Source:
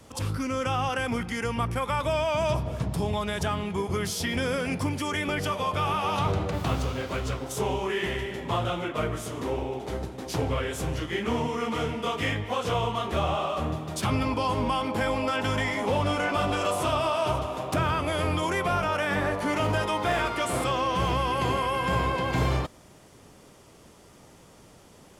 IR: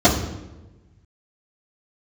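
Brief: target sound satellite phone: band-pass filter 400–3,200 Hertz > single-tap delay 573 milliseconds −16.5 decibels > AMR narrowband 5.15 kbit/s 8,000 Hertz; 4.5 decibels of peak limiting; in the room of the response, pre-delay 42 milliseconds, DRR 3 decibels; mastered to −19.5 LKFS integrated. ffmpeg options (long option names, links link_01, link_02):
-filter_complex "[0:a]alimiter=limit=-18dB:level=0:latency=1,asplit=2[link_01][link_02];[1:a]atrim=start_sample=2205,adelay=42[link_03];[link_02][link_03]afir=irnorm=-1:irlink=0,volume=-26.5dB[link_04];[link_01][link_04]amix=inputs=2:normalize=0,highpass=400,lowpass=3200,aecho=1:1:573:0.15,volume=11dB" -ar 8000 -c:a libopencore_amrnb -b:a 5150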